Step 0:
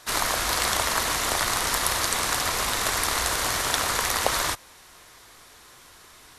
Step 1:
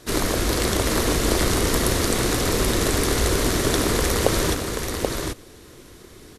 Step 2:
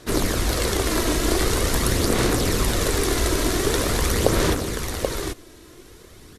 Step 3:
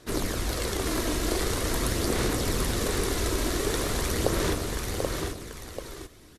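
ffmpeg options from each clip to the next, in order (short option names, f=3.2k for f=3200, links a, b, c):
-af "lowshelf=f=570:t=q:w=1.5:g=13,aecho=1:1:782:0.596,volume=-1dB"
-af "aphaser=in_gain=1:out_gain=1:delay=3.1:decay=0.35:speed=0.45:type=sinusoidal,volume=-1.5dB"
-af "aecho=1:1:738:0.501,volume=-7dB"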